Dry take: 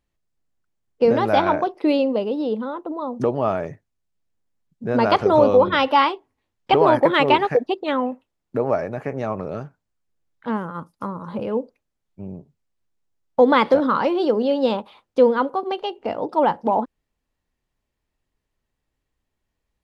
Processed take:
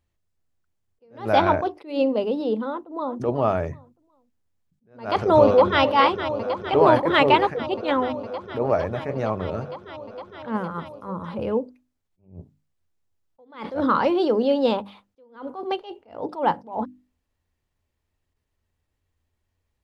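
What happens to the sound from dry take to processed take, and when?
2.69–3.18 s: echo throw 370 ms, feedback 25%, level -12 dB
5.01–5.82 s: echo throw 460 ms, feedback 85%, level -11.5 dB
whole clip: peaking EQ 86 Hz +13 dB 0.41 oct; hum notches 50/100/150/200/250/300 Hz; attacks held to a fixed rise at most 150 dB/s

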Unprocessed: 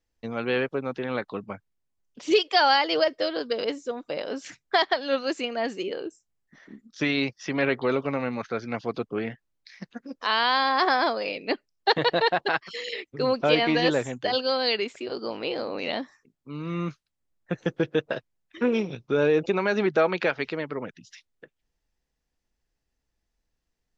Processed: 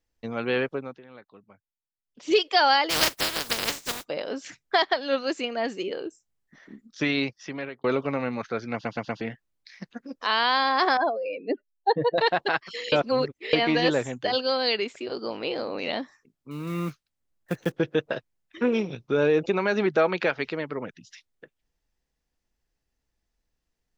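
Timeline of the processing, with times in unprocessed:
0.68–2.37 s: dip -18.5 dB, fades 0.33 s
2.89–4.04 s: spectral contrast reduction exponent 0.2
7.17–7.84 s: fade out
8.73 s: stutter in place 0.12 s, 4 plays
10.97–12.18 s: spectral contrast enhancement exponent 2.4
12.92–13.53 s: reverse
16.51–17.72 s: block-companded coder 5-bit

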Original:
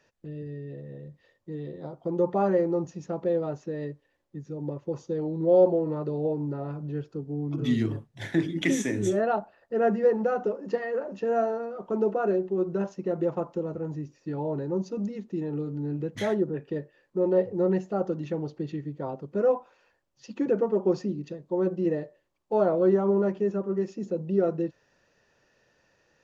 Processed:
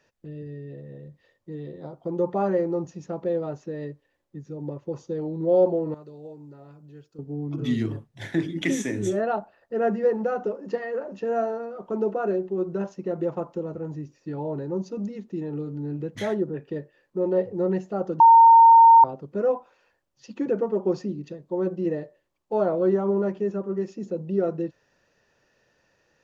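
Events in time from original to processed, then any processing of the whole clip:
5.94–7.19 s: pre-emphasis filter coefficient 0.8
18.20–19.04 s: bleep 916 Hz -8.5 dBFS

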